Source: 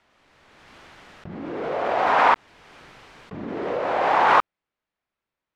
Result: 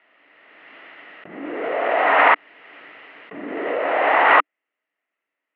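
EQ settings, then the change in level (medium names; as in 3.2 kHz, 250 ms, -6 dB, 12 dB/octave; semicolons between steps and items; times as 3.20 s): cabinet simulation 290–3200 Hz, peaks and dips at 290 Hz +9 dB, 450 Hz +4 dB, 650 Hz +7 dB, 1.3 kHz +5 dB, 2 kHz +7 dB, 2.8 kHz +9 dB; peaking EQ 1.9 kHz +7 dB 0.28 oct; -2.0 dB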